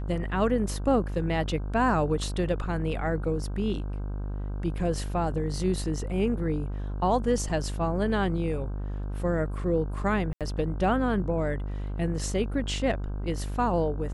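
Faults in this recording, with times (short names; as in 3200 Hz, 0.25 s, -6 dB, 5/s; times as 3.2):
buzz 50 Hz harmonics 32 -32 dBFS
10.33–10.41 gap 77 ms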